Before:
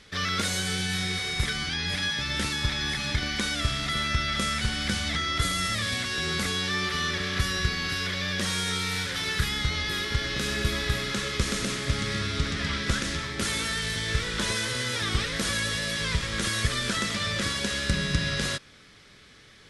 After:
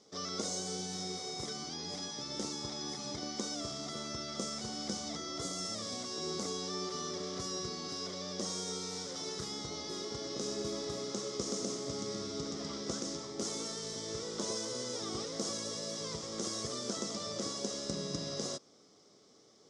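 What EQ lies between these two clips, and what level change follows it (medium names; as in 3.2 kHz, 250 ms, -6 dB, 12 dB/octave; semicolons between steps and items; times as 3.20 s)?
cabinet simulation 330–6500 Hz, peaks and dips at 560 Hz -3 dB, 950 Hz -9 dB, 1.7 kHz -10 dB, 2.5 kHz -9 dB, 4.3 kHz -9 dB; high-order bell 2.2 kHz -15.5 dB; 0.0 dB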